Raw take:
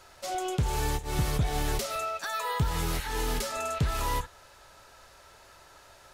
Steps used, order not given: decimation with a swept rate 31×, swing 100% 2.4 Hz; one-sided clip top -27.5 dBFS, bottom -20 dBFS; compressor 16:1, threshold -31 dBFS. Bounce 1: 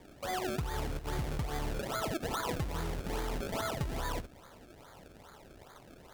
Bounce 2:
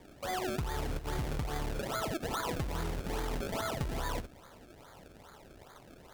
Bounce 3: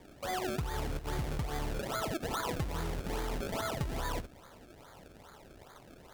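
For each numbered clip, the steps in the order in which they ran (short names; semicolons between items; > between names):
compressor > decimation with a swept rate > one-sided clip; decimation with a swept rate > one-sided clip > compressor; decimation with a swept rate > compressor > one-sided clip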